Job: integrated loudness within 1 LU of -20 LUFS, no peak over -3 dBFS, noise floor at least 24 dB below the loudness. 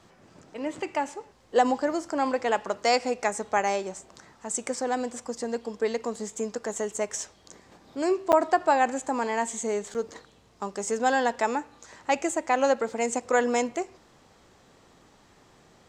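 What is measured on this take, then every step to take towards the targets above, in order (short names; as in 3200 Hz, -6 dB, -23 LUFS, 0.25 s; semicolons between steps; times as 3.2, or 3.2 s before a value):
dropouts 2; longest dropout 8.2 ms; loudness -27.5 LUFS; peak -8.0 dBFS; loudness target -20.0 LUFS
-> interpolate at 8.32/9.94, 8.2 ms; gain +7.5 dB; limiter -3 dBFS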